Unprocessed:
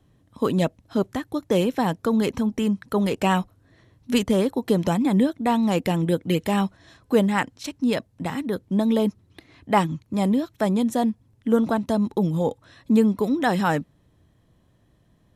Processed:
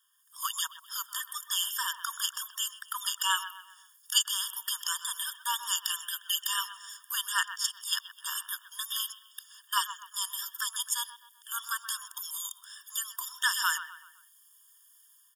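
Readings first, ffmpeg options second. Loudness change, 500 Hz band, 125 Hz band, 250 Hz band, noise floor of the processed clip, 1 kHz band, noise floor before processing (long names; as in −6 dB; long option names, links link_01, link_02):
−8.0 dB, below −40 dB, below −40 dB, below −40 dB, −61 dBFS, −9.5 dB, −62 dBFS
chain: -filter_complex "[0:a]acrossover=split=5900[link_01][link_02];[link_02]acompressor=threshold=-56dB:ratio=4:attack=1:release=60[link_03];[link_01][link_03]amix=inputs=2:normalize=0,highpass=1400,aemphasis=mode=production:type=50fm,acrossover=split=5300[link_04][link_05];[link_04]aecho=1:1:128|256|384|512:0.251|0.103|0.0422|0.0173[link_06];[link_05]dynaudnorm=framelen=120:gausssize=5:maxgain=13dB[link_07];[link_06][link_07]amix=inputs=2:normalize=0,afftfilt=real='re*eq(mod(floor(b*sr/1024/920),2),1)':imag='im*eq(mod(floor(b*sr/1024/920),2),1)':win_size=1024:overlap=0.75,volume=1.5dB"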